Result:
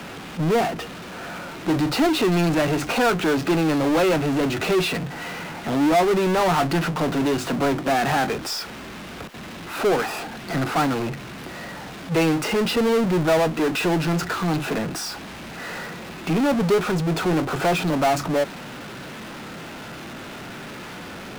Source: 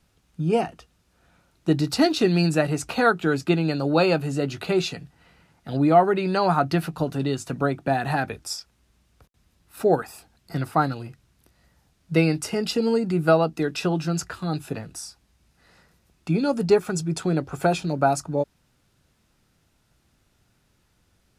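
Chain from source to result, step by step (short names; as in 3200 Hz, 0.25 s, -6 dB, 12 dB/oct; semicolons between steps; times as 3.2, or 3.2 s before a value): three-band isolator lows -22 dB, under 170 Hz, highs -21 dB, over 3500 Hz; harmonic-percussive split percussive -4 dB; power-law curve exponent 0.35; gain -5.5 dB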